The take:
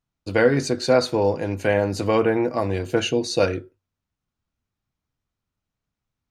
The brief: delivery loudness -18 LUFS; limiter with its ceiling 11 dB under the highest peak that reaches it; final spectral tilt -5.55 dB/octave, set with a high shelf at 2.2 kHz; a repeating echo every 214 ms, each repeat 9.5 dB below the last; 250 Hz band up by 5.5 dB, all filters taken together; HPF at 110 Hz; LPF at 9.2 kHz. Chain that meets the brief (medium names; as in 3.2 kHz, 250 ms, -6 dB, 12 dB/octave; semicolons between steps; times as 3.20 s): high-pass 110 Hz; low-pass 9.2 kHz; peaking EQ 250 Hz +7.5 dB; treble shelf 2.2 kHz -6 dB; peak limiter -13.5 dBFS; feedback delay 214 ms, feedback 33%, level -9.5 dB; trim +5.5 dB